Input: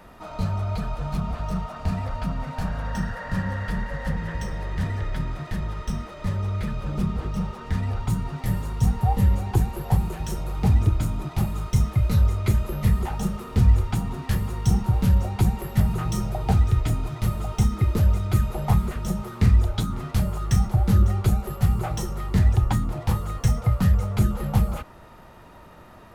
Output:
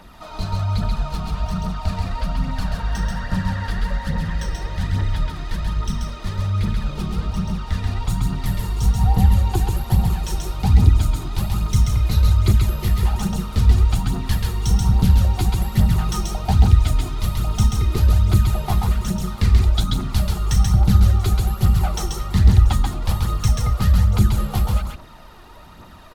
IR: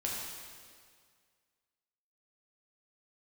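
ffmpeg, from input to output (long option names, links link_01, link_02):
-af "equalizer=frequency=125:width_type=o:width=1:gain=-5,equalizer=frequency=500:width_type=o:width=1:gain=-6,equalizer=frequency=2000:width_type=o:width=1:gain=-3,equalizer=frequency=4000:width_type=o:width=1:gain=6,aecho=1:1:134:0.708,aphaser=in_gain=1:out_gain=1:delay=2.9:decay=0.41:speed=1.2:type=triangular,volume=2.5dB"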